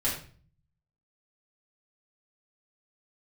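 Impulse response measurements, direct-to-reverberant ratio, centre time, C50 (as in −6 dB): −8.0 dB, 34 ms, 5.0 dB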